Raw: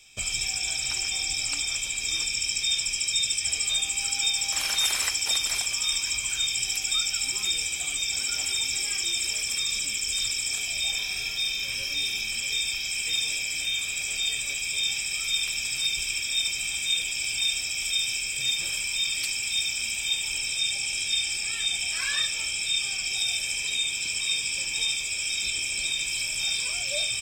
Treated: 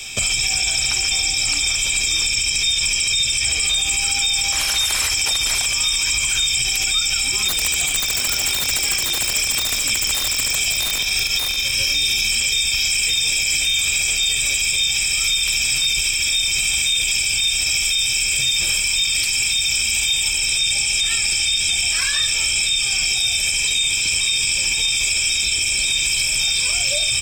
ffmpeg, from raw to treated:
ffmpeg -i in.wav -filter_complex "[0:a]asettb=1/sr,asplit=3[link_01][link_02][link_03];[link_01]atrim=end=7.484[link_04];[link_02]atrim=start=7.48:end=11.79,asetpts=PTS-STARTPTS,afade=type=in:duration=0.004:curve=qsin,afade=type=out:start_time=4.306:duration=0.004:curve=qsin,aeval=exprs='(mod(10*val(0)+1,2)-1)/10':channel_layout=same[link_05];[link_03]atrim=start=11.786[link_06];[link_04][link_05]acrossfade=duration=0.004:curve1=hsin:curve2=qsin[link_07];[link_07][link_06]acrossfade=duration=0.004:curve1=qsin:curve2=hsin,asplit=3[link_08][link_09][link_10];[link_08]atrim=end=21.002[link_11];[link_09]atrim=start=20.998:end=21.692,asetpts=PTS-STARTPTS,areverse[link_12];[link_10]atrim=start=21.688[link_13];[link_11][link_12]acrossfade=duration=0.004:curve1=hsin:curve2=hsin[link_14];[link_14][link_13]acrossfade=duration=0.004:curve1=hsin:curve2=hsin,acrossover=split=110|3600[link_15][link_16][link_17];[link_15]acompressor=threshold=-50dB:ratio=4[link_18];[link_16]acompressor=threshold=-42dB:ratio=4[link_19];[link_17]acompressor=threshold=-36dB:ratio=4[link_20];[link_18][link_19][link_20]amix=inputs=3:normalize=0,alimiter=level_in=31dB:limit=-1dB:release=50:level=0:latency=1,volume=-9dB" out.wav

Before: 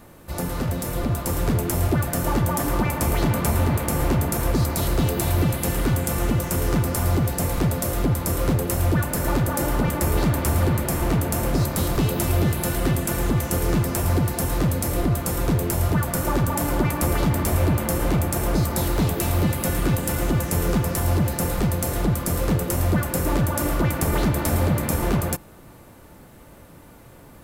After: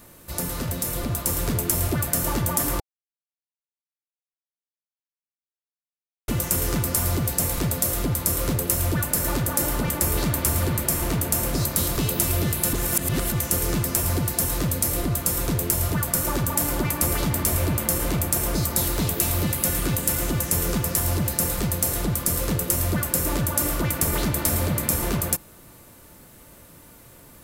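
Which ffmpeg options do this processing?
ffmpeg -i in.wav -filter_complex "[0:a]asplit=5[link_01][link_02][link_03][link_04][link_05];[link_01]atrim=end=2.8,asetpts=PTS-STARTPTS,afade=type=out:start_time=2.796:duration=0.004:curve=hsin[link_06];[link_02]atrim=start=2.8:end=6.28,asetpts=PTS-STARTPTS,volume=0[link_07];[link_03]atrim=start=6.28:end=12.732,asetpts=PTS-STARTPTS,afade=type=in:duration=0.004:curve=hsin[link_08];[link_04]atrim=start=12.728:end=13.322,asetpts=PTS-STARTPTS,areverse[link_09];[link_05]atrim=start=13.318[link_10];[link_06][link_07][link_08]concat=n=3:v=0:a=1[link_11];[link_11][link_09]acrossfade=duration=0.004:curve1=hsin:curve2=hsin[link_12];[link_12][link_10]acrossfade=duration=0.004:curve1=hsin:curve2=hsin,highshelf=frequency=3200:gain=11,bandreject=frequency=790:width=12,volume=-4dB" out.wav

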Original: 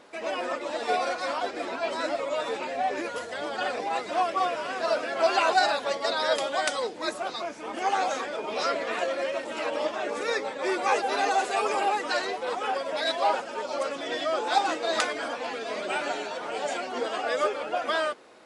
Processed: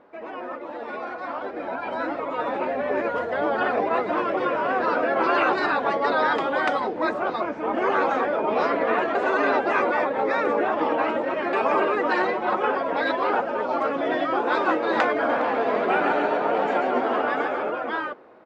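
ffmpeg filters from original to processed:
ffmpeg -i in.wav -filter_complex "[0:a]asettb=1/sr,asplit=3[link_01][link_02][link_03];[link_01]atrim=end=1.604[link_04];[link_02]atrim=start=1.6:end=2.03,asetpts=PTS-STARTPTS,afade=type=in:duration=0.004:curve=qsin,afade=type=out:start_time=0.426:duration=0.004:curve=qsin,aecho=1:1:1.3:0.46,atrim=end_sample=18963[link_05];[link_03]atrim=start=2.026[link_06];[link_04][link_05]acrossfade=duration=0.004:curve1=hsin:curve2=qsin[link_07];[link_07][link_06]acrossfade=duration=0.004:curve1=qsin:curve2=hsin,asettb=1/sr,asplit=3[link_08][link_09][link_10];[link_08]atrim=end=12.114[link_11];[link_09]atrim=start=12.11:end=12.65,asetpts=PTS-STARTPTS,afade=type=in:duration=0.004:curve=qsin,afade=type=out:start_time=0.536:duration=0.004:curve=qsin,aecho=1:1:5.5:0.65,atrim=end_sample=23814[link_12];[link_10]atrim=start=12.646[link_13];[link_11][link_12]acrossfade=duration=0.004:curve1=hsin:curve2=qsin[link_14];[link_14][link_13]acrossfade=duration=0.004:curve1=qsin:curve2=hsin,asplit=3[link_15][link_16][link_17];[link_15]afade=type=out:start_time=15.28:duration=0.02[link_18];[link_16]aecho=1:1:137|274|411|548|685|822:0.562|0.259|0.119|0.0547|0.0252|0.0116,afade=type=in:start_time=15.28:duration=0.02,afade=type=out:start_time=17.7:duration=0.02[link_19];[link_17]afade=type=in:start_time=17.7:duration=0.02[link_20];[link_18][link_19][link_20]amix=inputs=3:normalize=0,asplit=3[link_21][link_22][link_23];[link_21]atrim=end=9.152[link_24];[link_22]atrim=start=9.148:end=11.532,asetpts=PTS-STARTPTS,areverse[link_25];[link_23]atrim=start=11.528[link_26];[link_24][link_25]acrossfade=duration=0.004:curve1=hsin:curve2=hsin[link_27];[link_27][link_26]acrossfade=duration=0.004:curve1=hsin:curve2=hsin,lowpass=1400,afftfilt=real='re*lt(hypot(re,im),0.224)':imag='im*lt(hypot(re,im),0.224)':win_size=1024:overlap=0.75,dynaudnorm=framelen=500:gausssize=9:maxgain=11dB" out.wav

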